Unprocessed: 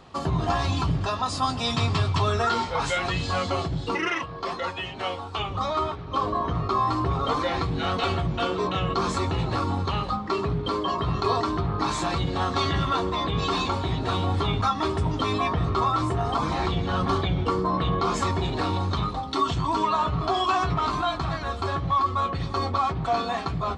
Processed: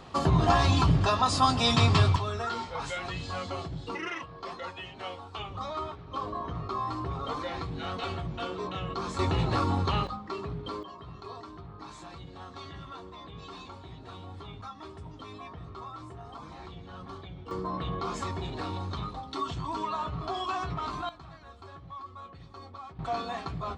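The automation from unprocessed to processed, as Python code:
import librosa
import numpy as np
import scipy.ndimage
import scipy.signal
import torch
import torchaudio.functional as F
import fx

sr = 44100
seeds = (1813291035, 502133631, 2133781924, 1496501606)

y = fx.gain(x, sr, db=fx.steps((0.0, 2.0), (2.16, -9.0), (9.19, -1.0), (10.07, -10.0), (10.83, -19.0), (17.51, -9.0), (21.09, -20.0), (22.99, -7.5)))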